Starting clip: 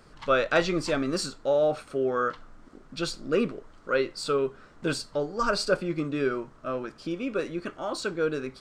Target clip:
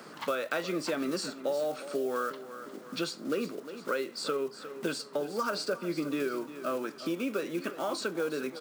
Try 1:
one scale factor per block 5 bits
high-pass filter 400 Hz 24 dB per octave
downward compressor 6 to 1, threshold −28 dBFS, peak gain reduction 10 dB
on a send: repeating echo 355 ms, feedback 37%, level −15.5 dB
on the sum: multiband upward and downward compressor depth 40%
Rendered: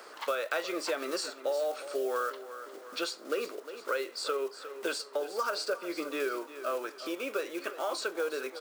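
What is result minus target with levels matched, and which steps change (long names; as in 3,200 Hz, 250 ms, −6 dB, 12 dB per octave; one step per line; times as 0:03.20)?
250 Hz band −6.0 dB
change: high-pass filter 180 Hz 24 dB per octave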